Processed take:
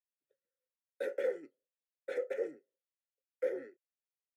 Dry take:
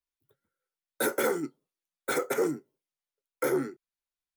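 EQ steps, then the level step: vowel filter e; bell 72 Hz -6 dB 1.9 oct; 0.0 dB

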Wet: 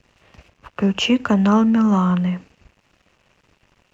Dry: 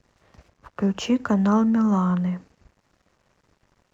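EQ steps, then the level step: bell 2700 Hz +10.5 dB 0.57 oct; +4.0 dB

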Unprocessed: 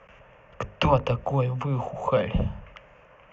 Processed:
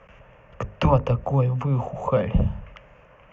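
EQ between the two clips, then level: dynamic EQ 3600 Hz, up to -7 dB, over -47 dBFS, Q 1.1; low shelf 260 Hz +6 dB; 0.0 dB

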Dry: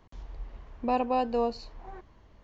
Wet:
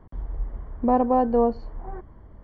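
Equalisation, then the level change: polynomial smoothing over 41 samples; low shelf 490 Hz +7.5 dB; +3.5 dB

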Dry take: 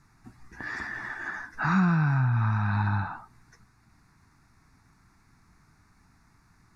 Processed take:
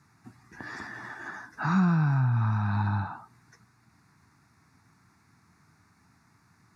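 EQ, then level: HPF 86 Hz 24 dB/oct; dynamic EQ 2000 Hz, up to -7 dB, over -48 dBFS, Q 1.3; 0.0 dB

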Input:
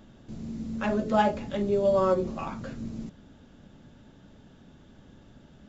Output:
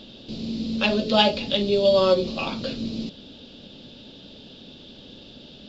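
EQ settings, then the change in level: ten-band EQ 250 Hz +6 dB, 500 Hz +11 dB, 4000 Hz +11 dB; dynamic EQ 400 Hz, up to -6 dB, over -27 dBFS, Q 0.71; band shelf 3600 Hz +13.5 dB 1.3 oct; 0.0 dB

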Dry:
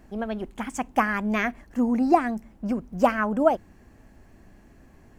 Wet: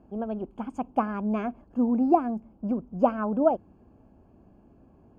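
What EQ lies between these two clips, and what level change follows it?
running mean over 23 samples; HPF 100 Hz 6 dB/oct; 0.0 dB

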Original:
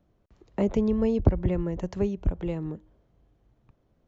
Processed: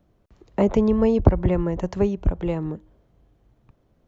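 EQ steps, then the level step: dynamic EQ 980 Hz, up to +6 dB, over -42 dBFS, Q 0.89; +4.5 dB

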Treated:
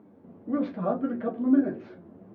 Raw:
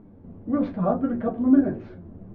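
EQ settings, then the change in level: Bessel high-pass 290 Hz, order 2; dynamic EQ 850 Hz, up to -5 dB, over -41 dBFS, Q 1.1; 0.0 dB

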